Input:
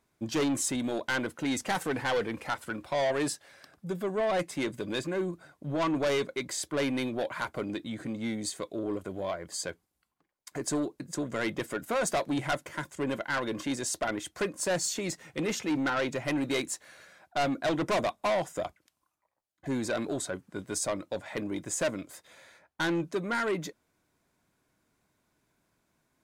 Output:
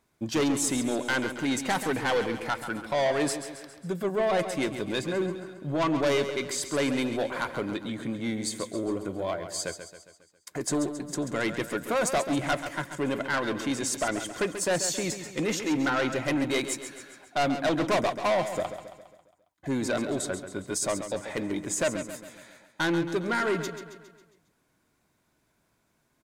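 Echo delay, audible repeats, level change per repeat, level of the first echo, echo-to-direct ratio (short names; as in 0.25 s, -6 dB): 0.136 s, 5, -5.5 dB, -10.0 dB, -8.5 dB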